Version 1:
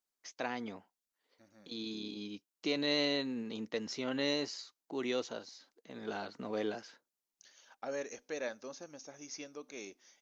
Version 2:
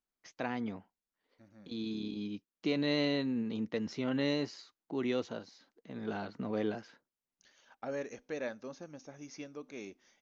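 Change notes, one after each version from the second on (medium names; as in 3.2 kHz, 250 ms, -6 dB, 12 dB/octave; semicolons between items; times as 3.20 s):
master: add tone controls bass +10 dB, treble -9 dB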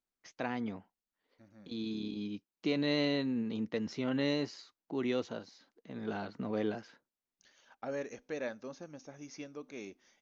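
no change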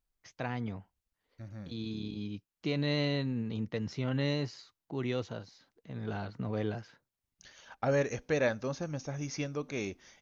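second voice +10.0 dB; master: add resonant low shelf 170 Hz +9.5 dB, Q 1.5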